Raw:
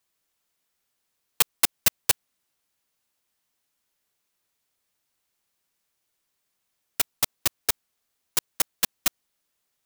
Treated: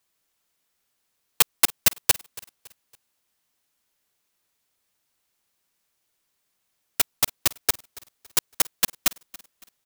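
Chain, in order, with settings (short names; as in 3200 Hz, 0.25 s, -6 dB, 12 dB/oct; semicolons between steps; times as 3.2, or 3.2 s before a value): feedback echo 0.28 s, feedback 39%, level -21.5 dB; gain +2.5 dB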